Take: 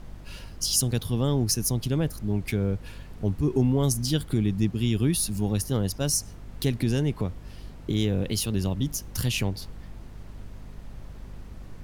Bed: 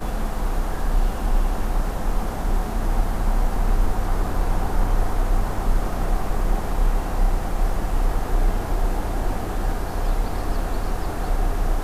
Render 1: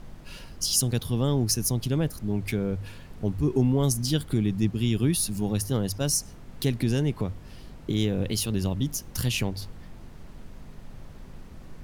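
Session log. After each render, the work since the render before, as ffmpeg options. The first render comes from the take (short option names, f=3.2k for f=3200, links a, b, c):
-af "bandreject=f=50:t=h:w=4,bandreject=f=100:t=h:w=4"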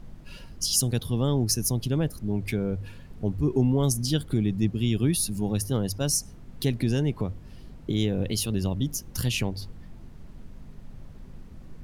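-af "afftdn=nr=6:nf=-45"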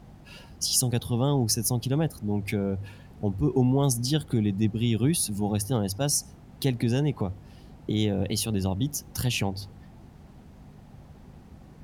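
-af "highpass=58,equalizer=f=780:w=3.8:g=8"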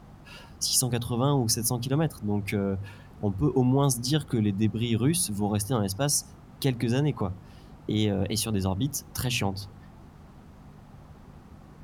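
-af "equalizer=f=1.2k:w=2.2:g=7,bandreject=f=60:t=h:w=6,bandreject=f=120:t=h:w=6,bandreject=f=180:t=h:w=6,bandreject=f=240:t=h:w=6"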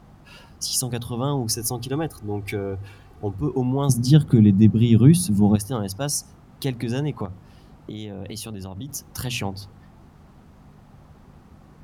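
-filter_complex "[0:a]asettb=1/sr,asplit=3[a][b][c];[a]atrim=end=1.504[d];[b]atrim=start=1.5:end=3.35,asetpts=PTS-STARTPTS,afade=t=in:d=0.004:c=qsin,afade=t=out:st=1.846:d=0.004:c=qsin,aecho=1:1:2.6:0.58,atrim=end_sample=81585[e];[c]atrim=start=3.346[f];[d][e]acrossfade=d=0.004:c1=hsin:c2=qsin[g];[g][f]acrossfade=d=0.004:c1=qsin:c2=hsin,asettb=1/sr,asplit=3[h][i][j];[h]atrim=end=3.894[k];[i]atrim=start=3.89:end=5.56,asetpts=PTS-STARTPTS,afade=t=in:d=0.004:c=qsin,afade=t=out:st=1.666:d=0.004:c=qsin,equalizer=f=160:t=o:w=2.3:g=13.5[l];[j]atrim=start=5.556[m];[k][l]acrossfade=d=0.004:c1=hsin:c2=qsin[n];[n][m]acrossfade=d=0.004:c1=qsin:c2=hsin,asettb=1/sr,asplit=3[o][p][q];[o]atrim=end=7.254[r];[p]atrim=start=7.25:end=8.89,asetpts=PTS-STARTPTS,afade=t=in:d=0.004:c=qsin,afade=t=out:st=1.636:d=0.004:c=qsin,acompressor=threshold=-29dB:ratio=6:attack=3.2:release=140:knee=1:detection=peak[s];[q]atrim=start=8.886[t];[r][s]acrossfade=d=0.004:c1=hsin:c2=qsin[u];[u][t]acrossfade=d=0.004:c1=qsin:c2=hsin"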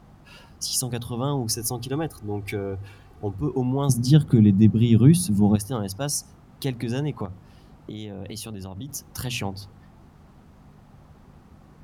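-af "volume=-1.5dB"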